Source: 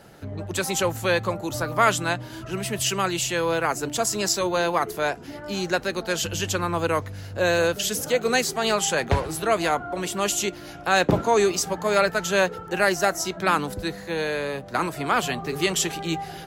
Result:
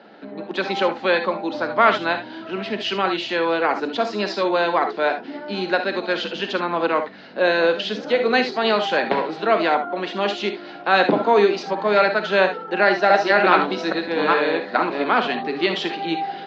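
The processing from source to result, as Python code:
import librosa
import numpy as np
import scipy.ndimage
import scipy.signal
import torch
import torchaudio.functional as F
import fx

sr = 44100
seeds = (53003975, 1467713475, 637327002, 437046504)

y = fx.reverse_delay(x, sr, ms=415, wet_db=0.0, at=(12.68, 15.04))
y = scipy.signal.sosfilt(scipy.signal.ellip(3, 1.0, 40, [220.0, 4200.0], 'bandpass', fs=sr, output='sos'), y)
y = fx.air_absorb(y, sr, metres=99.0)
y = fx.notch(y, sr, hz=1200.0, q=23.0)
y = fx.rev_gated(y, sr, seeds[0], gate_ms=90, shape='rising', drr_db=7.0)
y = y * librosa.db_to_amplitude(4.5)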